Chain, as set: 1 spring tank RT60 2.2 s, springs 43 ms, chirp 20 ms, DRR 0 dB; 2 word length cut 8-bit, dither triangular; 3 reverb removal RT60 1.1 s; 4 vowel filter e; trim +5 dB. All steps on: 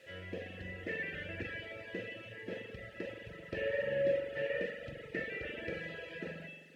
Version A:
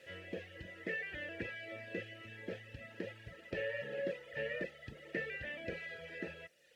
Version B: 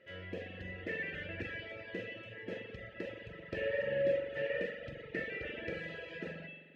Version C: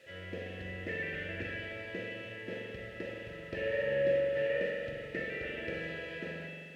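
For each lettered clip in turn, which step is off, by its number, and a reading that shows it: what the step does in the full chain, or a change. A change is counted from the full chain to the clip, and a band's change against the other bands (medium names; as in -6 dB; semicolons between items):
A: 1, momentary loudness spread change -3 LU; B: 2, distortion -24 dB; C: 3, loudness change +3.0 LU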